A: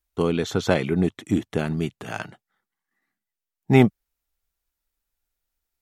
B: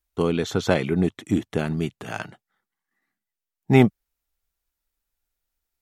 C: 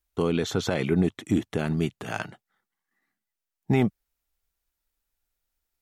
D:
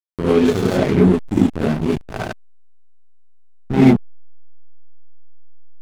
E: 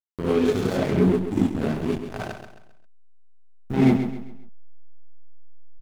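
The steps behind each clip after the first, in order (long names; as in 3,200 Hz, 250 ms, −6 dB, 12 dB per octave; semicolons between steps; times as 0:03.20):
no processing that can be heard
brickwall limiter −12.5 dBFS, peak gain reduction 9.5 dB
reverb whose tail is shaped and stops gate 120 ms rising, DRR −7 dB; slack as between gear wheels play −15.5 dBFS; level +3.5 dB
bit reduction 8 bits; on a send: repeating echo 133 ms, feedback 37%, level −9 dB; on the sum: level −6.5 dB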